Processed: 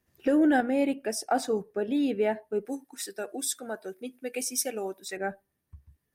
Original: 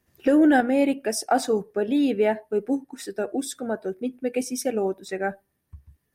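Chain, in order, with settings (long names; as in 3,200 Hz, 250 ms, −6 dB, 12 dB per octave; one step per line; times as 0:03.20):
0:02.65–0:05.17: spectral tilt +3 dB per octave
level −5 dB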